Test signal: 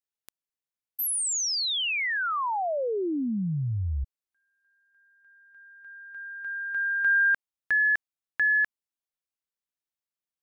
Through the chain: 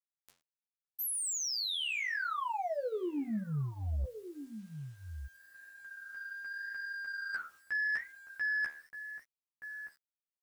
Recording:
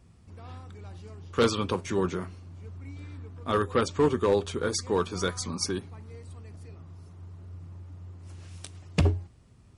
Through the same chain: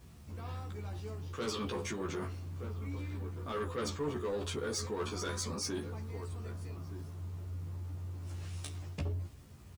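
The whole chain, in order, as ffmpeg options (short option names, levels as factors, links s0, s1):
-filter_complex "[0:a]flanger=delay=6.9:depth=6.4:regen=-80:speed=0.86:shape=sinusoidal,asplit=2[s0][s1];[s1]alimiter=level_in=1.88:limit=0.0631:level=0:latency=1:release=62,volume=0.531,volume=0.75[s2];[s0][s2]amix=inputs=2:normalize=0,asplit=2[s3][s4];[s4]adelay=1224,volume=0.112,highshelf=f=4000:g=-27.6[s5];[s3][s5]amix=inputs=2:normalize=0,areverse,acompressor=threshold=0.0126:ratio=6:attack=79:release=53:knee=6:detection=rms,areverse,acrusher=bits=10:mix=0:aa=0.000001,asoftclip=type=tanh:threshold=0.0266,asplit=2[s6][s7];[s7]adelay=14,volume=0.75[s8];[s6][s8]amix=inputs=2:normalize=0"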